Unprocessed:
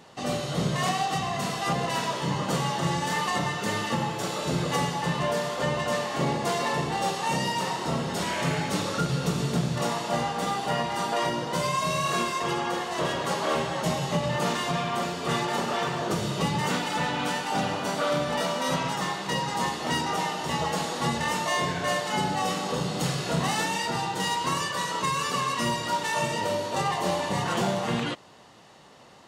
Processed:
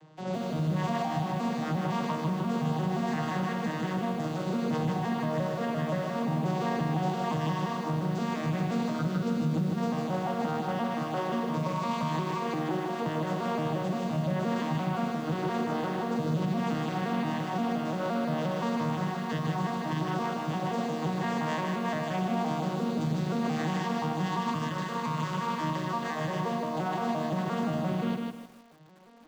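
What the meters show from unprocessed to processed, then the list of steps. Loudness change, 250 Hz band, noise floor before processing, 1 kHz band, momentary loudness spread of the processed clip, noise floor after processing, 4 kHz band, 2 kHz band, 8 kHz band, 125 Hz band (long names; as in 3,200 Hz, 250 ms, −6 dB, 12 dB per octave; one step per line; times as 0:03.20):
−3.0 dB, +2.0 dB, −34 dBFS, −5.0 dB, 2 LU, −35 dBFS, −12.0 dB, −8.0 dB, −15.0 dB, −0.5 dB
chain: vocoder with an arpeggio as carrier minor triad, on D#3, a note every 174 ms
brickwall limiter −21.5 dBFS, peak gain reduction 9.5 dB
feedback echo at a low word length 154 ms, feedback 35%, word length 9 bits, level −3 dB
level −1.5 dB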